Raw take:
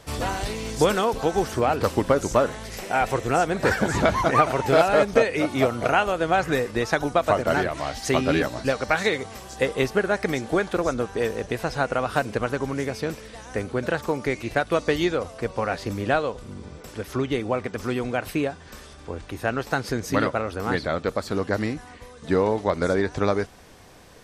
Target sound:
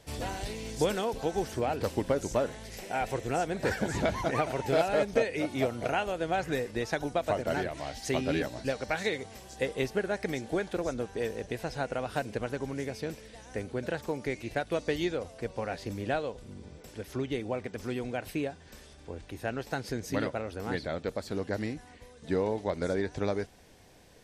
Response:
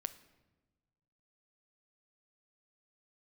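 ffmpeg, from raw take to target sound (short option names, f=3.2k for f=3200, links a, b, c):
-af "equalizer=f=1.2k:t=o:w=0.52:g=-8.5,volume=-7.5dB"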